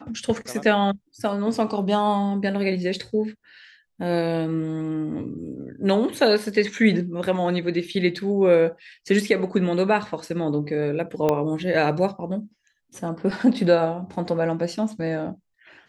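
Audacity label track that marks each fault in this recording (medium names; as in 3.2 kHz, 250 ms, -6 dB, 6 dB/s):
11.290000	11.290000	pop -9 dBFS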